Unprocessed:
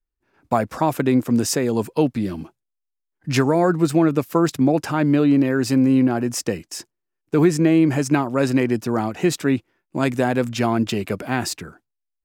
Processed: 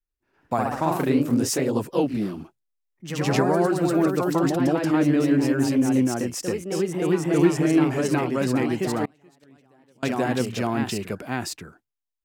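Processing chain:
delay with pitch and tempo change per echo 91 ms, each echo +1 semitone, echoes 3
0:09.05–0:10.03: gate with flip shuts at −14 dBFS, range −31 dB
level −5.5 dB

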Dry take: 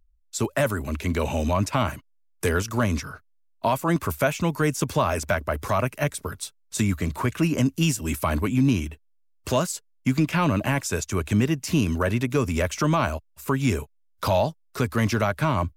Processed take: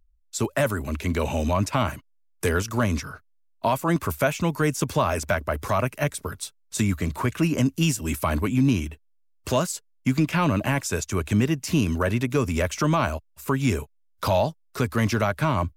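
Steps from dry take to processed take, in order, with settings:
no processing that can be heard

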